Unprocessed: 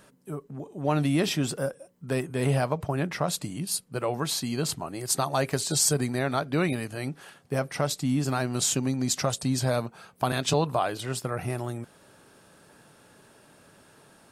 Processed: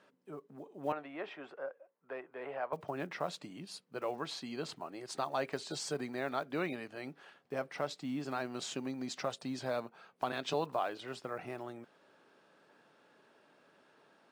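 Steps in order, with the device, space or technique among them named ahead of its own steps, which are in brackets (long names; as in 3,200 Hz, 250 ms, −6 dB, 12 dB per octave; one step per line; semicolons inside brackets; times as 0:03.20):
early digital voice recorder (band-pass filter 270–3,800 Hz; one scale factor per block 7 bits)
0:00.92–0:02.73: three-way crossover with the lows and the highs turned down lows −20 dB, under 440 Hz, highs −24 dB, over 2,300 Hz
level −8 dB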